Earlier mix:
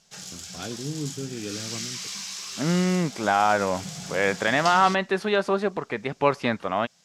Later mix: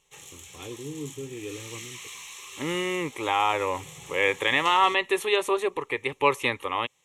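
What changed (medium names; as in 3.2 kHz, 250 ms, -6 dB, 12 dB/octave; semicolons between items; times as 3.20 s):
second voice: remove low-pass 1.4 kHz 6 dB/octave; master: add static phaser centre 1 kHz, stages 8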